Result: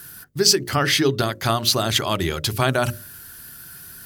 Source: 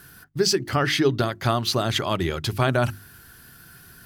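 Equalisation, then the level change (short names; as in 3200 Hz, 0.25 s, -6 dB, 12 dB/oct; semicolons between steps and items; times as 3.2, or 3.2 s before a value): high shelf 4700 Hz +10 dB; notches 60/120/180/240/300/360/420/480/540/600 Hz; +1.5 dB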